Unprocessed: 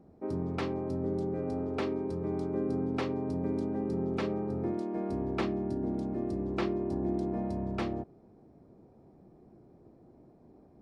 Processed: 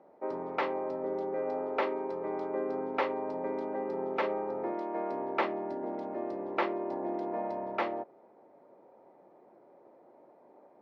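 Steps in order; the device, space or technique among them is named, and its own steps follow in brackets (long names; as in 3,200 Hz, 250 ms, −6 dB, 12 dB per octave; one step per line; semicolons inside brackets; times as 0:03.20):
tin-can telephone (band-pass filter 610–2,400 Hz; hollow resonant body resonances 560/900/2,000 Hz, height 9 dB, ringing for 45 ms)
level +6.5 dB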